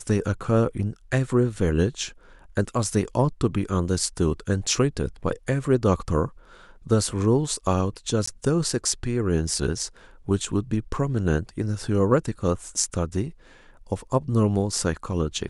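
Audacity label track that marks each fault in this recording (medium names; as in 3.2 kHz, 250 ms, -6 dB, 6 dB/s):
8.260000	8.270000	dropout 14 ms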